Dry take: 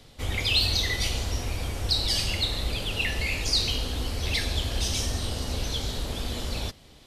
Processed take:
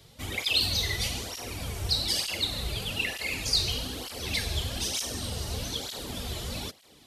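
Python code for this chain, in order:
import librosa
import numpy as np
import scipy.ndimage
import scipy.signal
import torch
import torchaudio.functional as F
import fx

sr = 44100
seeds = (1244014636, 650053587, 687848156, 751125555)

y = fx.high_shelf(x, sr, hz=9000.0, db=8.5)
y = fx.flanger_cancel(y, sr, hz=1.1, depth_ms=4.2)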